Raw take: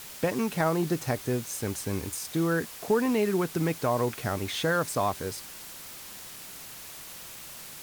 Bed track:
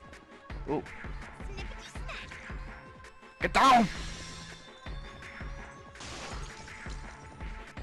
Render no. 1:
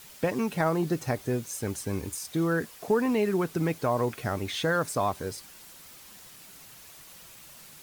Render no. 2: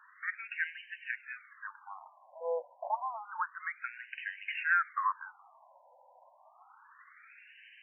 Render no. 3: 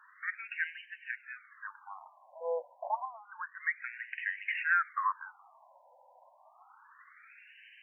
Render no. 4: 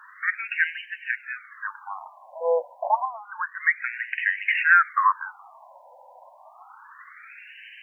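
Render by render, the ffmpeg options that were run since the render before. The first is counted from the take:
ffmpeg -i in.wav -af "afftdn=noise_reduction=7:noise_floor=-44" out.wav
ffmpeg -i in.wav -filter_complex "[0:a]asplit=2[link_01][link_02];[link_02]asoftclip=type=hard:threshold=-23dB,volume=-5dB[link_03];[link_01][link_03]amix=inputs=2:normalize=0,afftfilt=real='re*between(b*sr/1024,710*pow(2200/710,0.5+0.5*sin(2*PI*0.29*pts/sr))/1.41,710*pow(2200/710,0.5+0.5*sin(2*PI*0.29*pts/sr))*1.41)':imag='im*between(b*sr/1024,710*pow(2200/710,0.5+0.5*sin(2*PI*0.29*pts/sr))/1.41,710*pow(2200/710,0.5+0.5*sin(2*PI*0.29*pts/sr))*1.41)':win_size=1024:overlap=0.75" out.wav
ffmpeg -i in.wav -filter_complex "[0:a]asettb=1/sr,asplit=3[link_01][link_02][link_03];[link_01]atrim=end=0.854[link_04];[link_02]atrim=start=0.85:end=1.53,asetpts=PTS-STARTPTS,afade=type=in:duration=0.004:curve=qsin,afade=type=out:start_time=0.676:duration=0.004:curve=qsin,lowpass=2300[link_05];[link_03]atrim=start=1.526[link_06];[link_04][link_05]acrossfade=duration=0.004:curve1=hsin:curve2=qsin[link_07];[link_07][link_06]acrossfade=duration=0.004:curve1=qsin:curve2=hsin,asettb=1/sr,asplit=3[link_08][link_09][link_10];[link_08]atrim=end=3.054[link_11];[link_09]atrim=start=3.05:end=4.62,asetpts=PTS-STARTPTS,afade=type=in:duration=0.004:curve=qsin,afade=type=out:start_time=1.566:duration=0.004:curve=qsin,highpass=390,equalizer=frequency=450:width_type=q:width=4:gain=-7,equalizer=frequency=640:width_type=q:width=4:gain=-3,equalizer=frequency=900:width_type=q:width=4:gain=-10,equalizer=frequency=1300:width_type=q:width=4:gain=-10,equalizer=frequency=1900:width_type=q:width=4:gain=10,lowpass=frequency=2800:width=0.5412,lowpass=frequency=2800:width=1.3066[link_12];[link_10]atrim=start=4.616[link_13];[link_11][link_12]acrossfade=duration=0.004:curve1=hsin:curve2=qsin[link_14];[link_14][link_13]acrossfade=duration=0.004:curve1=qsin:curve2=hsin" out.wav
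ffmpeg -i in.wav -af "volume=11.5dB" out.wav

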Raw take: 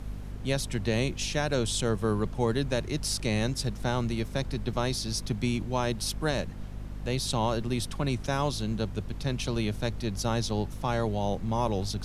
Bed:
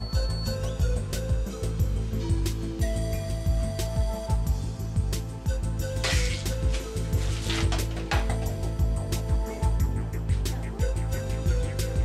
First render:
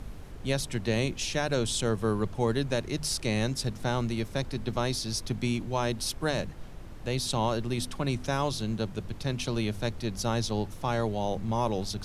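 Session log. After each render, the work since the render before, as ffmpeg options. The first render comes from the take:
ffmpeg -i in.wav -af "bandreject=frequency=50:width_type=h:width=4,bandreject=frequency=100:width_type=h:width=4,bandreject=frequency=150:width_type=h:width=4,bandreject=frequency=200:width_type=h:width=4,bandreject=frequency=250:width_type=h:width=4" out.wav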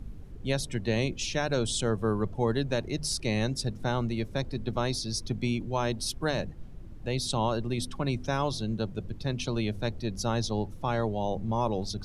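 ffmpeg -i in.wav -af "afftdn=noise_reduction=12:noise_floor=-43" out.wav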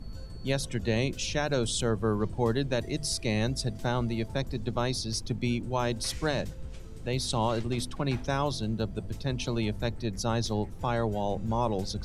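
ffmpeg -i in.wav -i bed.wav -filter_complex "[1:a]volume=-18dB[link_01];[0:a][link_01]amix=inputs=2:normalize=0" out.wav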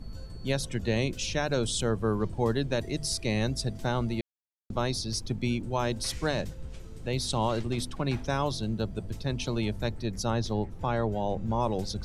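ffmpeg -i in.wav -filter_complex "[0:a]asettb=1/sr,asplit=3[link_01][link_02][link_03];[link_01]atrim=end=10.304[link_04];[link_02]atrim=start=10.3:end=11.6,asetpts=PTS-STARTPTS,afade=type=in:duration=0.004:curve=qsin,afade=type=out:start_time=1.296:duration=0.004:curve=qsin,aemphasis=mode=reproduction:type=cd[link_05];[link_03]atrim=start=11.596[link_06];[link_04][link_05]acrossfade=duration=0.004:curve1=hsin:curve2=qsin[link_07];[link_07][link_06]acrossfade=duration=0.004:curve1=qsin:curve2=hsin,asplit=3[link_08][link_09][link_10];[link_08]atrim=end=4.21,asetpts=PTS-STARTPTS,afade=type=out:start_time=4.206:duration=0.004:curve=hsin[link_11];[link_09]atrim=start=4.21:end=4.7,asetpts=PTS-STARTPTS,volume=0[link_12];[link_10]atrim=start=4.7,asetpts=PTS-STARTPTS,afade=type=in:duration=0.004:curve=hsin[link_13];[link_11][link_12][link_13]concat=n=3:v=0:a=1" out.wav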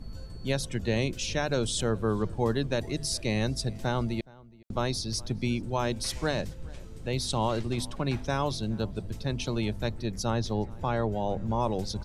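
ffmpeg -i in.wav -filter_complex "[0:a]asplit=2[link_01][link_02];[link_02]adelay=419.8,volume=-23dB,highshelf=frequency=4000:gain=-9.45[link_03];[link_01][link_03]amix=inputs=2:normalize=0" out.wav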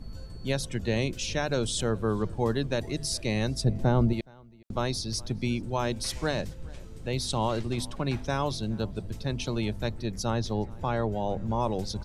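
ffmpeg -i in.wav -filter_complex "[0:a]asettb=1/sr,asplit=3[link_01][link_02][link_03];[link_01]atrim=end=3.644[link_04];[link_02]atrim=start=3.64:end=4.13,asetpts=PTS-STARTPTS,afade=type=in:duration=0.004:curve=qsin,afade=type=out:start_time=0.486:duration=0.004:curve=qsin,tiltshelf=frequency=1100:gain=7.5[link_05];[link_03]atrim=start=4.126[link_06];[link_04][link_05]acrossfade=duration=0.004:curve1=hsin:curve2=qsin[link_07];[link_07][link_06]acrossfade=duration=0.004:curve1=qsin:curve2=hsin" out.wav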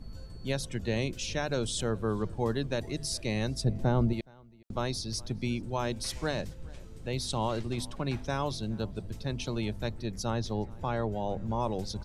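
ffmpeg -i in.wav -af "volume=-3dB" out.wav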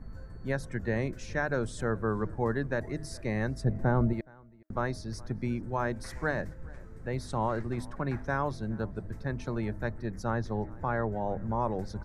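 ffmpeg -i in.wav -af "highshelf=frequency=2300:width_type=q:width=3:gain=-9.5,bandreject=frequency=313.4:width_type=h:width=4,bandreject=frequency=626.8:width_type=h:width=4" out.wav

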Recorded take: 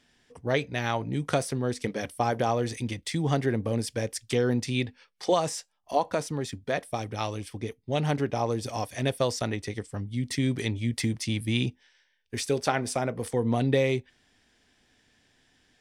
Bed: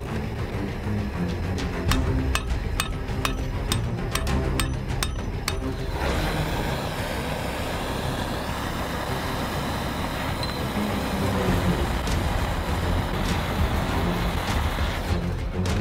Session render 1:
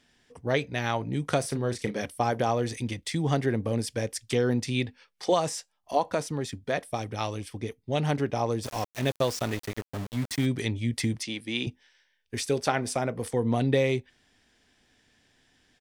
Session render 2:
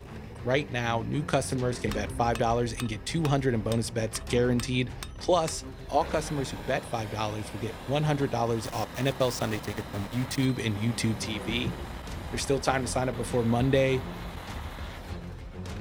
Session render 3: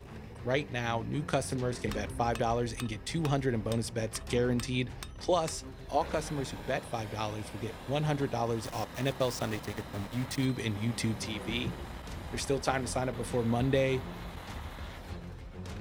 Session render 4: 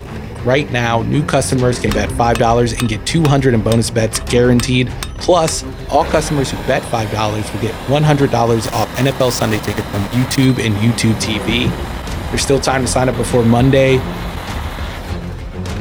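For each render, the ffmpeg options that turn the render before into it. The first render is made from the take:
ffmpeg -i in.wav -filter_complex "[0:a]asplit=3[link_01][link_02][link_03];[link_01]afade=type=out:start_time=1.43:duration=0.02[link_04];[link_02]asplit=2[link_05][link_06];[link_06]adelay=34,volume=-9dB[link_07];[link_05][link_07]amix=inputs=2:normalize=0,afade=type=in:start_time=1.43:duration=0.02,afade=type=out:start_time=2.04:duration=0.02[link_08];[link_03]afade=type=in:start_time=2.04:duration=0.02[link_09];[link_04][link_08][link_09]amix=inputs=3:normalize=0,asplit=3[link_10][link_11][link_12];[link_10]afade=type=out:start_time=8.63:duration=0.02[link_13];[link_11]aeval=exprs='val(0)*gte(abs(val(0)),0.02)':channel_layout=same,afade=type=in:start_time=8.63:duration=0.02,afade=type=out:start_time=10.45:duration=0.02[link_14];[link_12]afade=type=in:start_time=10.45:duration=0.02[link_15];[link_13][link_14][link_15]amix=inputs=3:normalize=0,asettb=1/sr,asplit=3[link_16][link_17][link_18];[link_16]atrim=end=11.234[link_19];[link_17]atrim=start=11.23:end=11.67,asetpts=PTS-STARTPTS,afade=type=in:duration=0.004:curve=qsin,afade=type=out:start_time=0.436:duration=0.004:curve=qsin,highpass=300,lowpass=6700[link_20];[link_18]atrim=start=11.666[link_21];[link_19][link_20]acrossfade=duration=0.004:curve1=hsin:curve2=qsin[link_22];[link_22][link_21]acrossfade=duration=0.004:curve1=qsin:curve2=hsin" out.wav
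ffmpeg -i in.wav -i bed.wav -filter_complex "[1:a]volume=-13dB[link_01];[0:a][link_01]amix=inputs=2:normalize=0" out.wav
ffmpeg -i in.wav -af "volume=-4dB" out.wav
ffmpeg -i in.wav -af "acontrast=82,alimiter=level_in=12dB:limit=-1dB:release=50:level=0:latency=1" out.wav

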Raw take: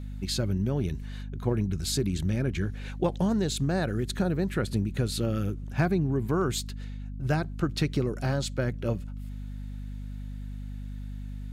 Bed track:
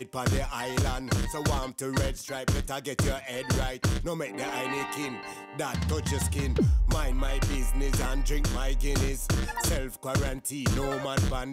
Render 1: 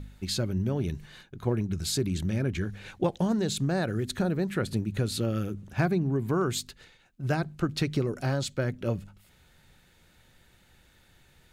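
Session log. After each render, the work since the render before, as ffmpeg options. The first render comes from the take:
ffmpeg -i in.wav -af "bandreject=frequency=50:width_type=h:width=4,bandreject=frequency=100:width_type=h:width=4,bandreject=frequency=150:width_type=h:width=4,bandreject=frequency=200:width_type=h:width=4,bandreject=frequency=250:width_type=h:width=4" out.wav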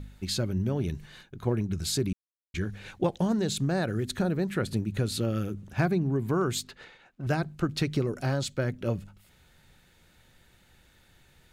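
ffmpeg -i in.wav -filter_complex "[0:a]asettb=1/sr,asplit=3[link_01][link_02][link_03];[link_01]atrim=end=6.644[link_04];[link_02]atrim=start=6.64:end=7.27,asetpts=PTS-STARTPTS,afade=type=in:duration=0.004:curve=qsin,afade=type=out:start_time=0.626:duration=0.004:curve=qsin,asplit=2[link_05][link_06];[link_06]highpass=frequency=720:poles=1,volume=18dB,asoftclip=type=tanh:threshold=-23.5dB[link_07];[link_05][link_07]amix=inputs=2:normalize=0,lowpass=frequency=1100:poles=1,volume=-6dB[link_08];[link_03]atrim=start=7.266[link_09];[link_04][link_08]acrossfade=duration=0.004:curve1=hsin:curve2=qsin[link_10];[link_10][link_09]acrossfade=duration=0.004:curve1=qsin:curve2=hsin,asplit=3[link_11][link_12][link_13];[link_11]atrim=end=2.13,asetpts=PTS-STARTPTS,afade=type=out:start_time=2.126:duration=0.004:curve=hsin[link_14];[link_12]atrim=start=2.13:end=2.54,asetpts=PTS-STARTPTS,volume=0[link_15];[link_13]atrim=start=2.54,asetpts=PTS-STARTPTS,afade=type=in:duration=0.004:curve=hsin[link_16];[link_14][link_15][link_16]concat=n=3:v=0:a=1" out.wav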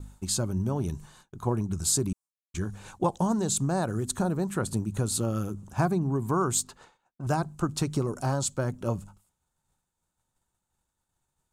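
ffmpeg -i in.wav -af "equalizer=frequency=500:width_type=o:width=1:gain=-3,equalizer=frequency=1000:width_type=o:width=1:gain=11,equalizer=frequency=2000:width_type=o:width=1:gain=-11,equalizer=frequency=4000:width_type=o:width=1:gain=-5,equalizer=frequency=8000:width_type=o:width=1:gain=12,agate=range=-33dB:threshold=-45dB:ratio=3:detection=peak" out.wav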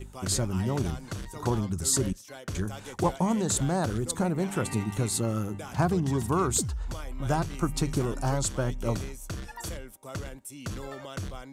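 ffmpeg -i in.wav -i bed.wav -filter_complex "[1:a]volume=-9.5dB[link_01];[0:a][link_01]amix=inputs=2:normalize=0" out.wav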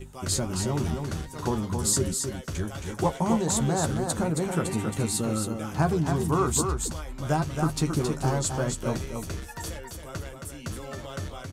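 ffmpeg -i in.wav -filter_complex "[0:a]asplit=2[link_01][link_02];[link_02]adelay=13,volume=-7dB[link_03];[link_01][link_03]amix=inputs=2:normalize=0,asplit=2[link_04][link_05];[link_05]aecho=0:1:271:0.531[link_06];[link_04][link_06]amix=inputs=2:normalize=0" out.wav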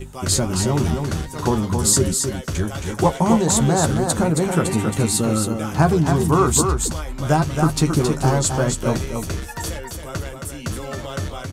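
ffmpeg -i in.wav -af "volume=8dB" out.wav

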